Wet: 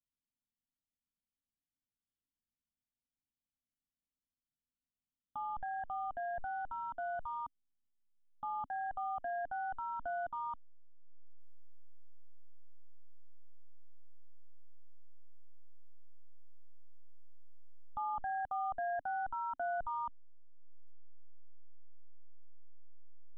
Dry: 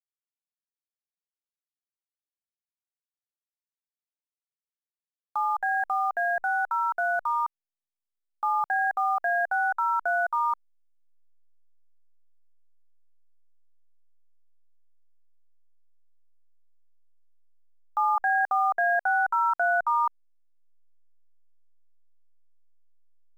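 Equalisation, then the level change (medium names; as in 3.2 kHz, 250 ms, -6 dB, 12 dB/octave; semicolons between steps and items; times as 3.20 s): cascade formant filter i; bass shelf 77 Hz +11 dB; static phaser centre 940 Hz, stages 4; +17.5 dB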